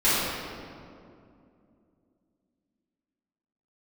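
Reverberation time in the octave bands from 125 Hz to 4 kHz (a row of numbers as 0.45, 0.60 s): 3.1, 3.6, 2.8, 2.2, 1.7, 1.4 s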